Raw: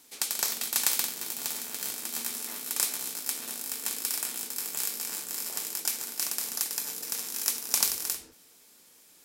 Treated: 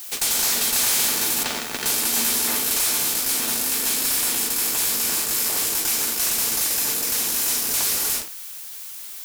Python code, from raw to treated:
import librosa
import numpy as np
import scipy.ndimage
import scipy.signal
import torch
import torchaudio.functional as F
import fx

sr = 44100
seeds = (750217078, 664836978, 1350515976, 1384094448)

y = fx.bessel_lowpass(x, sr, hz=3000.0, order=2, at=(1.43, 1.86))
y = fx.rev_freeverb(y, sr, rt60_s=2.6, hf_ratio=0.5, predelay_ms=10, drr_db=11.5)
y = fx.fuzz(y, sr, gain_db=41.0, gate_db=-46.0)
y = fx.rider(y, sr, range_db=10, speed_s=2.0)
y = fx.dmg_noise_colour(y, sr, seeds[0], colour='blue', level_db=-30.0)
y = F.gain(torch.from_numpy(y), -6.0).numpy()